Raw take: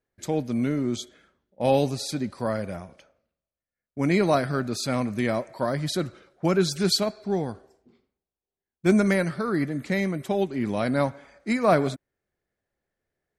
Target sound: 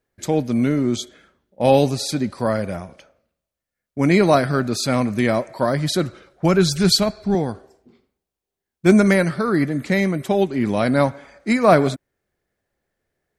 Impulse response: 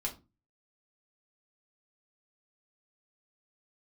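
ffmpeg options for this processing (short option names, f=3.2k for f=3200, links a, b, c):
-filter_complex "[0:a]asettb=1/sr,asplit=3[a][b][c];[a]atrim=end=6.074[d];[b]atrim=start=6.07:end=7.35,asetpts=PTS-STARTPTS,afade=t=in:d=0.004:c=qsin,afade=t=out:st=1.276:d=0.004:c=qsin,asubboost=boost=11.5:cutoff=140[e];[c]atrim=start=7.346[f];[d][e]acrossfade=d=0.004:c1=hsin:c2=qsin[g];[g][f]acrossfade=d=0.004:c1=qsin:c2=hsin,volume=6.5dB"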